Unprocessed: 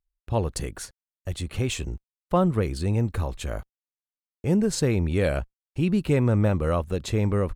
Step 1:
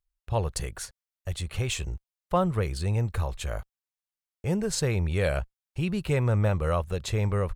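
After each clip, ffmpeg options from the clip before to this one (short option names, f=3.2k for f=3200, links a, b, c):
-af "equalizer=f=270:w=1.5:g=-12"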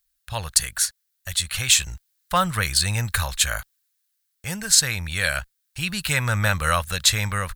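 -af "crystalizer=i=8.5:c=0,dynaudnorm=f=340:g=7:m=11.5dB,equalizer=f=400:t=o:w=0.67:g=-12,equalizer=f=1.6k:t=o:w=0.67:g=10,equalizer=f=4k:t=o:w=0.67:g=5,volume=-2dB"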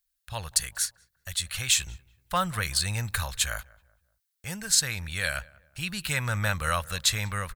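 -filter_complex "[0:a]asplit=2[a][b];[b]adelay=190,lowpass=f=1.4k:p=1,volume=-21.5dB,asplit=2[c][d];[d]adelay=190,lowpass=f=1.4k:p=1,volume=0.42,asplit=2[e][f];[f]adelay=190,lowpass=f=1.4k:p=1,volume=0.42[g];[a][c][e][g]amix=inputs=4:normalize=0,volume=-6dB"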